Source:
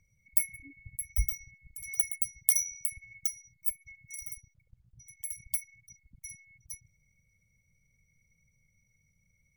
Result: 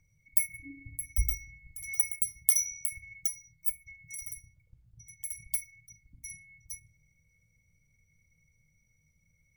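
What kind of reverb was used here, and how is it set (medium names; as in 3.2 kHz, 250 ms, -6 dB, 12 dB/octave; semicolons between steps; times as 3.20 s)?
FDN reverb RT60 0.56 s, low-frequency decay 1.3×, high-frequency decay 0.4×, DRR 6 dB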